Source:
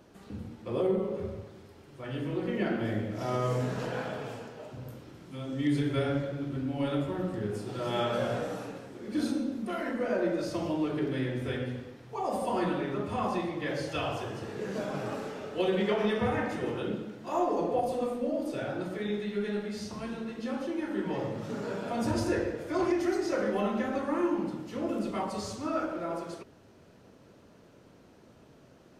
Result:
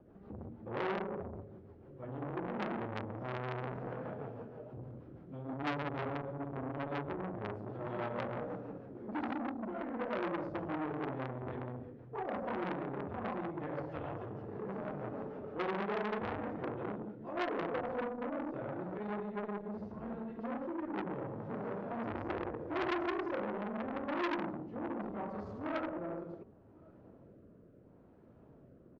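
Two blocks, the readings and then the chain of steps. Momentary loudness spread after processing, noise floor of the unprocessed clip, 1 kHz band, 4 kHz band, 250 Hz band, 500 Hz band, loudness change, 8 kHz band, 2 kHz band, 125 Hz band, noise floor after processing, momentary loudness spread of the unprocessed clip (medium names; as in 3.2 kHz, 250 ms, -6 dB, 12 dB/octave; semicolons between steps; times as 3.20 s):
11 LU, -57 dBFS, -4.5 dB, -11.0 dB, -8.0 dB, -8.0 dB, -7.5 dB, under -25 dB, -4.5 dB, -8.0 dB, -59 dBFS, 10 LU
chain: low-pass 1.1 kHz 12 dB/octave; bass shelf 180 Hz +2.5 dB; rotary cabinet horn 6.3 Hz, later 0.75 Hz, at 17.25 s; echo from a far wall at 190 m, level -28 dB; transformer saturation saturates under 1.8 kHz; trim -1.5 dB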